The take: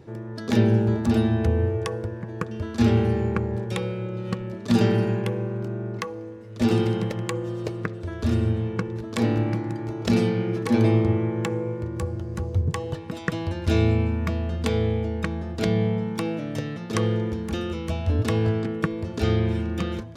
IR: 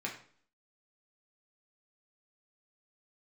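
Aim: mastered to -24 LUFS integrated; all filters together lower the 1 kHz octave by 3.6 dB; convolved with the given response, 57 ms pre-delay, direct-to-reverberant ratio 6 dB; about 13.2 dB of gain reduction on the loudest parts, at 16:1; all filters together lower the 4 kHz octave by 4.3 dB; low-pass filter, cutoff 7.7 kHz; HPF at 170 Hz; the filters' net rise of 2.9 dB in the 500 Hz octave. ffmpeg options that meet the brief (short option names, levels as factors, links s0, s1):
-filter_complex "[0:a]highpass=170,lowpass=7700,equalizer=f=500:t=o:g=5,equalizer=f=1000:t=o:g=-6.5,equalizer=f=4000:t=o:g=-5,acompressor=threshold=0.0355:ratio=16,asplit=2[s0][s1];[1:a]atrim=start_sample=2205,adelay=57[s2];[s1][s2]afir=irnorm=-1:irlink=0,volume=0.376[s3];[s0][s3]amix=inputs=2:normalize=0,volume=2.82"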